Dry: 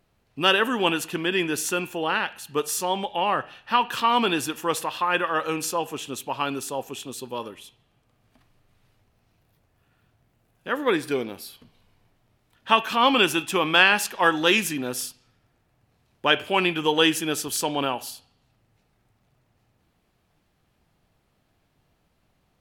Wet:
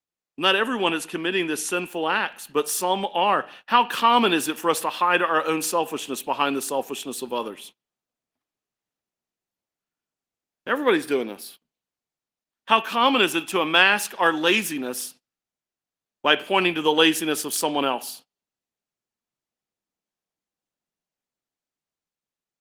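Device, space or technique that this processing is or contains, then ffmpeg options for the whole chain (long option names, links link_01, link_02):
video call: -af "highpass=frequency=180:width=0.5412,highpass=frequency=180:width=1.3066,dynaudnorm=framelen=590:gausssize=7:maxgain=6dB,agate=range=-28dB:threshold=-43dB:ratio=16:detection=peak" -ar 48000 -c:a libopus -b:a 24k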